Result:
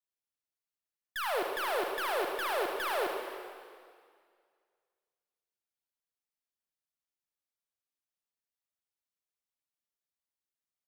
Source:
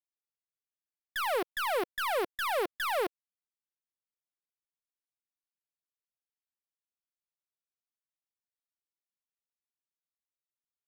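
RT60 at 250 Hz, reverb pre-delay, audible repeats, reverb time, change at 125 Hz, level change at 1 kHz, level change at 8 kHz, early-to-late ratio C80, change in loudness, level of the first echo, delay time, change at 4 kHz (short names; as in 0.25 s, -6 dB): 2.1 s, 39 ms, 1, 2.0 s, n/a, -1.0 dB, -1.0 dB, 4.5 dB, -1.0 dB, -11.0 dB, 74 ms, -1.0 dB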